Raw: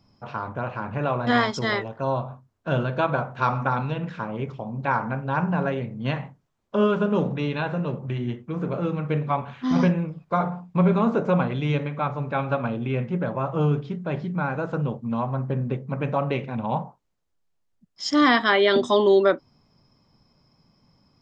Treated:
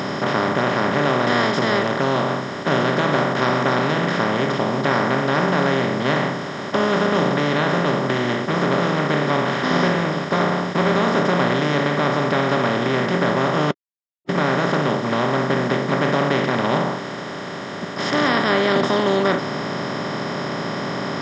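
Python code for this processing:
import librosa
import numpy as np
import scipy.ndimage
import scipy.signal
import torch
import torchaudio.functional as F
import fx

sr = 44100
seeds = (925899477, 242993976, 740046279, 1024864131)

y = fx.edit(x, sr, fx.silence(start_s=13.71, length_s=0.58), tone=tone)
y = fx.bin_compress(y, sr, power=0.2)
y = scipy.signal.sosfilt(scipy.signal.butter(2, 87.0, 'highpass', fs=sr, output='sos'), y)
y = y * librosa.db_to_amplitude(-6.5)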